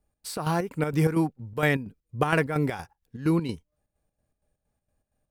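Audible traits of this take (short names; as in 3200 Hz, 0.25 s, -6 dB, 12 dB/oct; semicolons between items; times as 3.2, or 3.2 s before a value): chopped level 4.3 Hz, depth 60%, duty 60%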